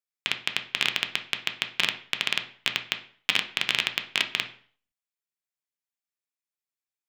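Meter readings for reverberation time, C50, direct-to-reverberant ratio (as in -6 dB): 0.45 s, 12.5 dB, 6.0 dB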